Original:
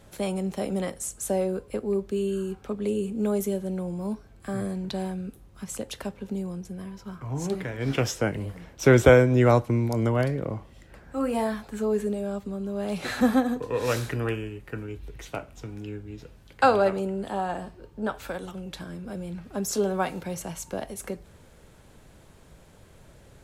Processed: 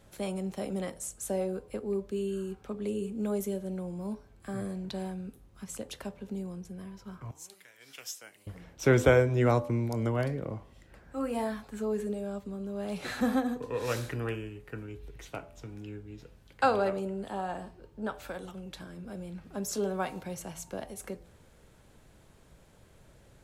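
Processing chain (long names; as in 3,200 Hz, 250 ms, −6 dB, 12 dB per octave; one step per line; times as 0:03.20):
0:07.31–0:08.47: first difference
hum removal 84.3 Hz, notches 14
level −5.5 dB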